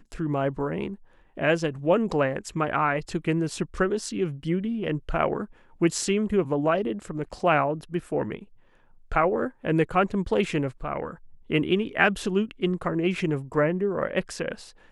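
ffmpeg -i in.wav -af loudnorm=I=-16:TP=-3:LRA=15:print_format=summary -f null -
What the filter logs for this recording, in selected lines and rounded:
Input Integrated:    -26.3 LUFS
Input True Peak:      -4.2 dBTP
Input LRA:             1.2 LU
Input Threshold:     -36.6 LUFS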